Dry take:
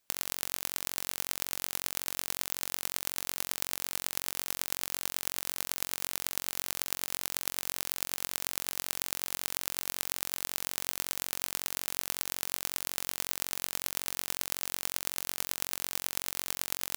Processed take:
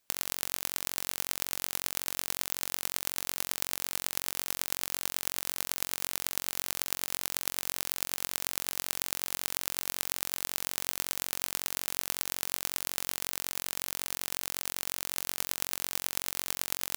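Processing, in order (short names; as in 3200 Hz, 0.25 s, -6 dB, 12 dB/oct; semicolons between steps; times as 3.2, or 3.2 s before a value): 13.1–15.17 negative-ratio compressor -38 dBFS, ratio -1; gain +1 dB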